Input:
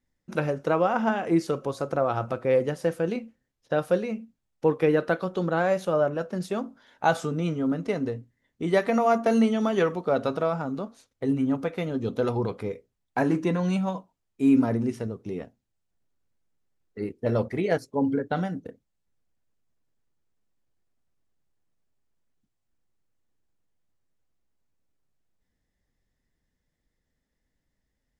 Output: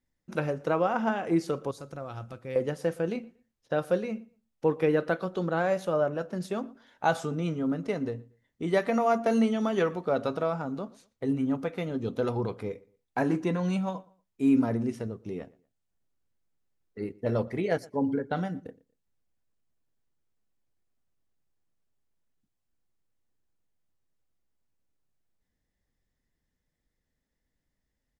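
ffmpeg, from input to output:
ffmpeg -i in.wav -filter_complex "[0:a]asettb=1/sr,asplit=3[link_01][link_02][link_03];[link_01]atrim=end=1.714[link_04];[link_02]atrim=start=1.71:end=2.56,asetpts=PTS-STARTPTS,afade=type=in:duration=0.004:curve=qsin,afade=type=out:start_time=0.846:duration=0.004:curve=qsin,equalizer=frequency=680:width=0.31:gain=-13[link_05];[link_03]atrim=start=2.556[link_06];[link_04][link_05]acrossfade=duration=0.004:curve1=hsin:curve2=qsin[link_07];[link_07][link_06]acrossfade=duration=0.004:curve1=qsin:curve2=hsin,asplit=2[link_08][link_09];[link_09]adelay=118,lowpass=frequency=3300:poles=1,volume=-23dB,asplit=2[link_10][link_11];[link_11]adelay=118,lowpass=frequency=3300:poles=1,volume=0.27[link_12];[link_10][link_12]amix=inputs=2:normalize=0[link_13];[link_08][link_13]amix=inputs=2:normalize=0,volume=-3dB" out.wav

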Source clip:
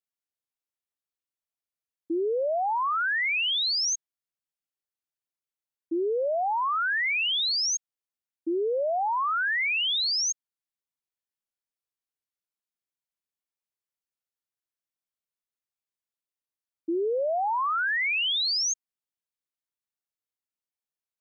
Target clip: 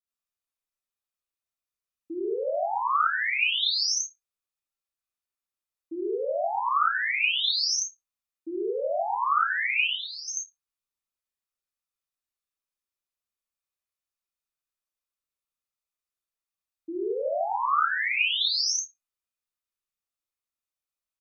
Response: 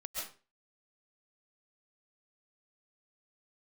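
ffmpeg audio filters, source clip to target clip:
-filter_complex "[0:a]asettb=1/sr,asplit=3[link_01][link_02][link_03];[link_01]atrim=end=9.874[link_04];[link_02]atrim=start=9.87:end=10.28,asetpts=PTS-STARTPTS,afade=type=in:duration=0.004:curve=qsin,afade=type=out:start_time=0.406:duration=0.004:curve=qsin,lowpass=frequency=1100:poles=1[link_05];[link_03]atrim=start=10.276[link_06];[link_04][link_05]acrossfade=duration=0.004:curve1=hsin:curve2=qsin[link_07];[link_07][link_06]acrossfade=duration=0.004:curve1=qsin:curve2=hsin,asplit=2[link_08][link_09];[link_09]adelay=34,volume=-6dB[link_10];[link_08][link_10]amix=inputs=2:normalize=0[link_11];[1:a]atrim=start_sample=2205,asetrate=83790,aresample=44100[link_12];[link_11][link_12]afir=irnorm=-1:irlink=0,volume=4.5dB"

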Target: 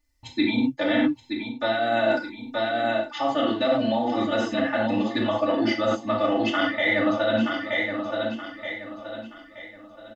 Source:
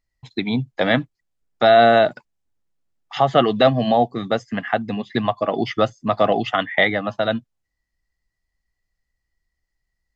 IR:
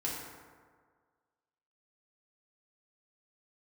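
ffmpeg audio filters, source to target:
-filter_complex "[0:a]highshelf=frequency=4200:gain=6,aecho=1:1:925|1850|2775|3700:0.224|0.0828|0.0306|0.0113[link_01];[1:a]atrim=start_sample=2205,afade=type=out:start_time=0.16:duration=0.01,atrim=end_sample=7497[link_02];[link_01][link_02]afir=irnorm=-1:irlink=0,areverse,acompressor=threshold=-22dB:ratio=12,areverse,aecho=1:1:3.4:0.97"

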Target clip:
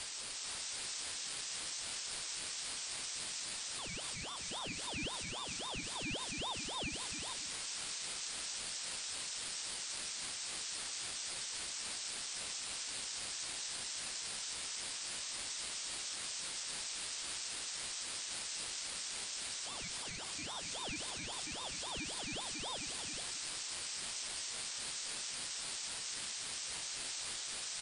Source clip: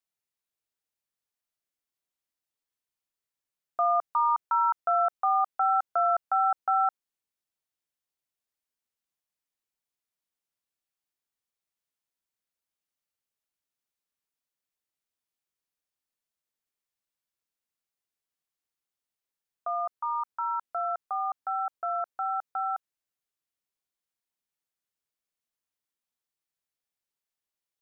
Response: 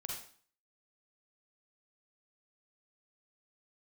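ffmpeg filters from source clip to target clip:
-filter_complex "[0:a]aeval=exprs='val(0)+0.5*0.0251*sgn(val(0))':channel_layout=same,aderivative,alimiter=level_in=8.5dB:limit=-24dB:level=0:latency=1:release=61,volume=-8.5dB,asplit=2[link_01][link_02];[link_02]aecho=0:1:441:0.631[link_03];[link_01][link_03]amix=inputs=2:normalize=0,aresample=16000,aresample=44100,highpass=frequency=1400:width=0.5412,highpass=frequency=1400:width=1.3066,asplit=2[link_04][link_05];[link_05]aecho=0:1:173:0.335[link_06];[link_04][link_06]amix=inputs=2:normalize=0,aeval=exprs='val(0)*sin(2*PI*1700*n/s+1700*0.4/3.7*sin(2*PI*3.7*n/s))':channel_layout=same,volume=8.5dB"

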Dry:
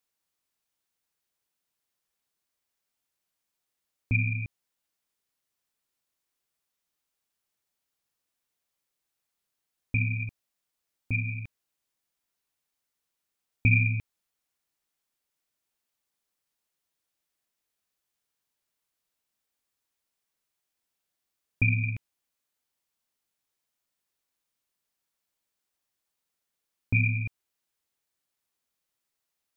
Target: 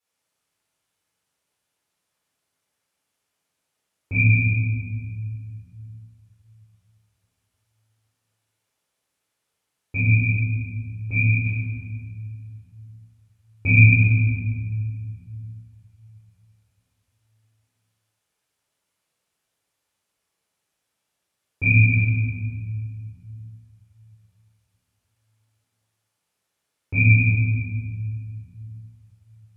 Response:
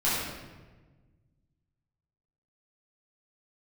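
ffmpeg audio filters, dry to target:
-filter_complex "[0:a]highpass=72[link_01];[1:a]atrim=start_sample=2205,asetrate=25578,aresample=44100[link_02];[link_01][link_02]afir=irnorm=-1:irlink=0,volume=-7dB"

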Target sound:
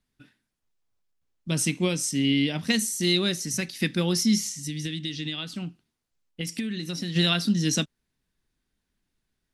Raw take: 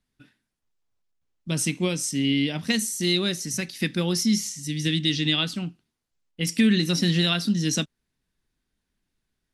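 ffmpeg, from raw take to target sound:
ffmpeg -i in.wav -filter_complex "[0:a]asplit=3[link_01][link_02][link_03];[link_01]afade=type=out:start_time=4.67:duration=0.02[link_04];[link_02]acompressor=threshold=-29dB:ratio=6,afade=type=in:start_time=4.67:duration=0.02,afade=type=out:start_time=7.15:duration=0.02[link_05];[link_03]afade=type=in:start_time=7.15:duration=0.02[link_06];[link_04][link_05][link_06]amix=inputs=3:normalize=0" out.wav

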